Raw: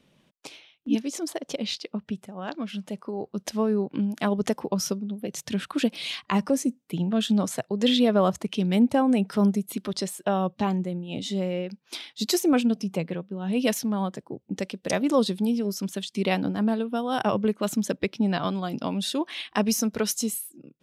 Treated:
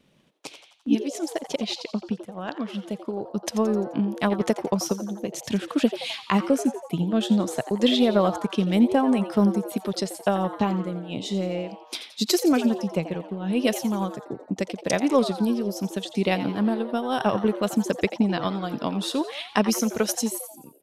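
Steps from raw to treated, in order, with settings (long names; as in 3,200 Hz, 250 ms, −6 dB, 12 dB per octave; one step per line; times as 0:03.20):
transient designer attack +4 dB, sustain −3 dB
pitch vibrato 0.67 Hz 5.8 cents
echo with shifted repeats 86 ms, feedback 53%, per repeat +140 Hz, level −13 dB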